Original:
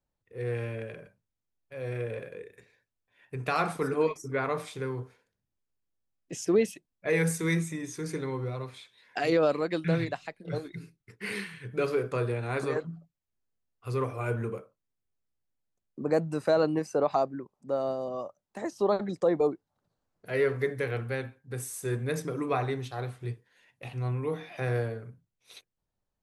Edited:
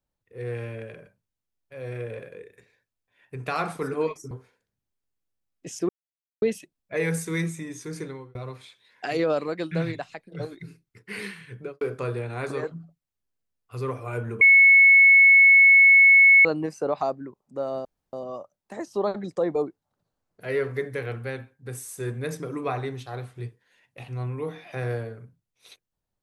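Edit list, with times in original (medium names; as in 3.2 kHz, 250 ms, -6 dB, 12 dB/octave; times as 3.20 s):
4.31–4.97 s: delete
6.55 s: insert silence 0.53 s
8.13–8.48 s: fade out
11.65–11.94 s: studio fade out
14.54–16.58 s: bleep 2.2 kHz -10.5 dBFS
17.98 s: insert room tone 0.28 s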